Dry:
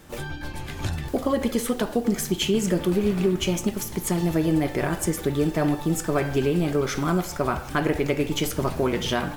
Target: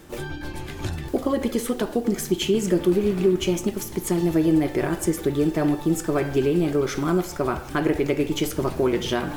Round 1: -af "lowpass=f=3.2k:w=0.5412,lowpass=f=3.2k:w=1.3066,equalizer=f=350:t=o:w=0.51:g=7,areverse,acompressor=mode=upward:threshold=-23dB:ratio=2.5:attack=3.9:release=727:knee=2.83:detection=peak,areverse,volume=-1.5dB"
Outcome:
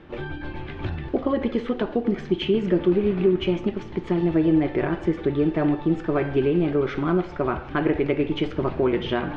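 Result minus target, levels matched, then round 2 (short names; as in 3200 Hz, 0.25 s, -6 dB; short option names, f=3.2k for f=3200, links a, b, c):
4000 Hz band -3.0 dB
-af "equalizer=f=350:t=o:w=0.51:g=7,areverse,acompressor=mode=upward:threshold=-23dB:ratio=2.5:attack=3.9:release=727:knee=2.83:detection=peak,areverse,volume=-1.5dB"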